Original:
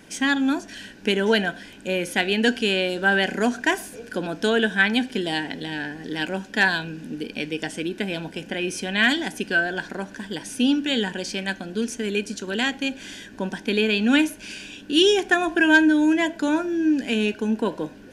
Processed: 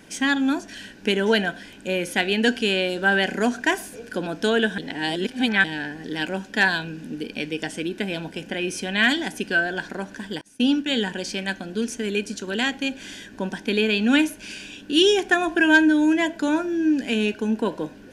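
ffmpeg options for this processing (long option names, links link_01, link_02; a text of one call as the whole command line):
ffmpeg -i in.wav -filter_complex "[0:a]asettb=1/sr,asplit=3[link_01][link_02][link_03];[link_01]atrim=end=10.414[link_04];[link_02]atrim=start=10.41:end=11.05,asetpts=PTS-STARTPTS,afade=type=in:duration=0.004:curve=qsin,afade=type=out:start_time=0.636:duration=0.004:curve=qsin,agate=range=-33dB:threshold=-25dB:ratio=3:release=100:detection=peak[link_05];[link_03]atrim=start=11.046[link_06];[link_04][link_05]acrossfade=duration=0.004:curve1=hsin:curve2=qsin[link_07];[link_07][link_06]acrossfade=duration=0.004:curve1=qsin:curve2=hsin,asplit=3[link_08][link_09][link_10];[link_08]atrim=end=4.782[link_11];[link_09]atrim=start=4.778:end=5.642,asetpts=PTS-STARTPTS,areverse[link_12];[link_10]atrim=start=5.638[link_13];[link_11][link_12]acrossfade=duration=0.004:curve1=hsin:curve2=hsin[link_14];[link_14][link_13]acrossfade=duration=0.004:curve1=hsin:curve2=hsin" out.wav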